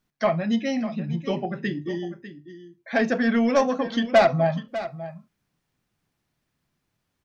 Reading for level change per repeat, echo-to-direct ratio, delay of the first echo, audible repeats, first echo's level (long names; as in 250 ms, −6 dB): repeats not evenly spaced, −13.5 dB, 598 ms, 1, −13.5 dB